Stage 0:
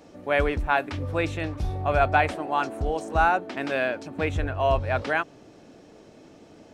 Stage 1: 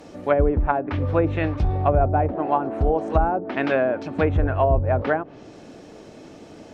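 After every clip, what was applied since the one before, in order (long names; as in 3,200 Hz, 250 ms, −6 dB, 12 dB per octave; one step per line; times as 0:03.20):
treble cut that deepens with the level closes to 510 Hz, closed at −19.5 dBFS
level +7 dB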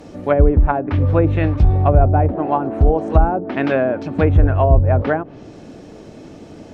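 low-shelf EQ 290 Hz +8 dB
level +1.5 dB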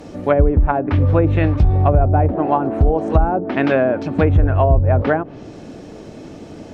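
downward compressor 2.5 to 1, threshold −13 dBFS, peak gain reduction 5 dB
level +2.5 dB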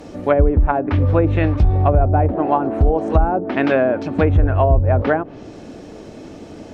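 parametric band 140 Hz −4 dB 0.77 octaves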